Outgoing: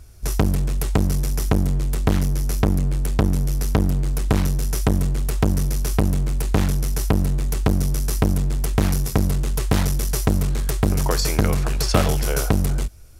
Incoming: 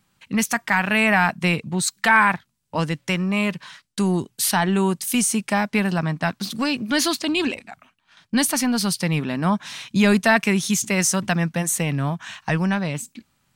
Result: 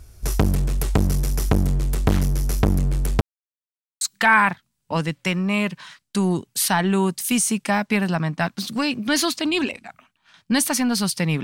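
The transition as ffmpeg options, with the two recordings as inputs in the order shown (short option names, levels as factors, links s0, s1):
-filter_complex "[0:a]apad=whole_dur=11.43,atrim=end=11.43,asplit=2[s0][s1];[s0]atrim=end=3.21,asetpts=PTS-STARTPTS,afade=t=out:st=3.206:d=0.004:c=hsin[s2];[s1]atrim=start=3.21:end=4.01,asetpts=PTS-STARTPTS,volume=0[s3];[1:a]atrim=start=1.84:end=9.26,asetpts=PTS-STARTPTS,afade=t=in:d=0.004:c=hsin[s4];[s2][s3][s4]concat=n=3:v=0:a=1"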